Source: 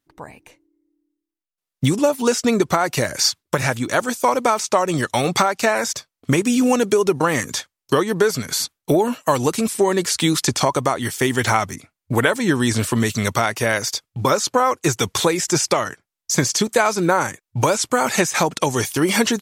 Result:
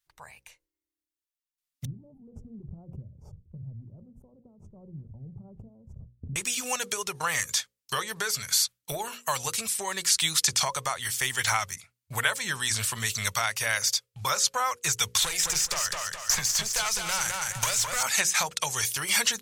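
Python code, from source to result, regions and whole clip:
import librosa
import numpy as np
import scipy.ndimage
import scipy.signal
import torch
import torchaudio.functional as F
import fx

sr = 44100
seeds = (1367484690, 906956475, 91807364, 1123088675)

y = fx.chain(x, sr, fx.cheby2_lowpass(hz=1600.0, order=4, stop_db=80),
    fx.pre_swell(db_per_s=37.0), at=(1.85, 6.36))
y = fx.chain(y, sr, fx.tube_stage(drive_db=16.0, bias=0.5),
    fx.echo_feedback(ms=209, feedback_pct=23, wet_db=-6.0),
    fx.band_squash(depth_pct=100), at=(15.22, 18.03))
y = fx.tone_stack(y, sr, knobs='10-0-10')
y = fx.hum_notches(y, sr, base_hz=60, count=9)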